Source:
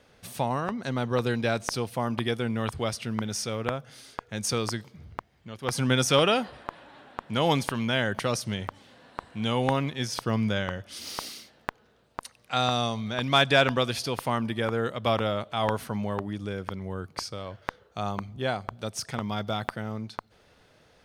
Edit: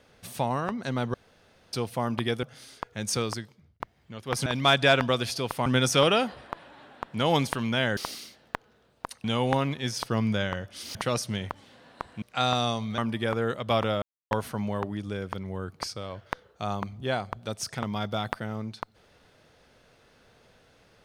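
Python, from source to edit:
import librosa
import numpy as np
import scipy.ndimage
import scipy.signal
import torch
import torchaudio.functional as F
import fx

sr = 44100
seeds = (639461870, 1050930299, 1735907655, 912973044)

y = fx.edit(x, sr, fx.room_tone_fill(start_s=1.14, length_s=0.59),
    fx.cut(start_s=2.43, length_s=1.36),
    fx.fade_out_span(start_s=4.53, length_s=0.63),
    fx.swap(start_s=8.13, length_s=1.27, other_s=11.11, other_length_s=1.27),
    fx.move(start_s=13.14, length_s=1.2, to_s=5.82),
    fx.silence(start_s=15.38, length_s=0.29), tone=tone)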